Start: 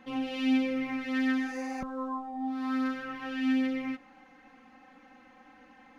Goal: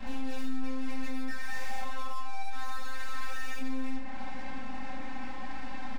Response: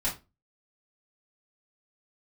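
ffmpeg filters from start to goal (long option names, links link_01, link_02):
-filter_complex "[0:a]asettb=1/sr,asplit=3[link_01][link_02][link_03];[link_01]atrim=end=1.284[link_04];[link_02]atrim=start=1.28:end=3.59,asetpts=PTS-STARTPTS,afade=type=in:duration=0.004:curve=qsin,afade=type=out:start_time=2.306:duration=0.004:curve=qsin,highpass=frequency=740:width=0.5412,highpass=frequency=740:width=1.3066[link_05];[link_03]atrim=start=3.586[link_06];[link_04][link_05]acrossfade=duration=0.004:curve1=hsin:curve2=qsin[link_07];[link_07][link_06]acrossfade=duration=0.004:curve1=qsin:curve2=hsin,acompressor=threshold=-43dB:ratio=6,aeval=exprs='(tanh(1000*val(0)+0.7)-tanh(0.7))/1000':channel_layout=same,aecho=1:1:68|136|204|272|340|408:0.316|0.168|0.0888|0.0471|0.025|0.0132[link_08];[1:a]atrim=start_sample=2205[link_09];[link_08][link_09]afir=irnorm=-1:irlink=0,volume=12dB"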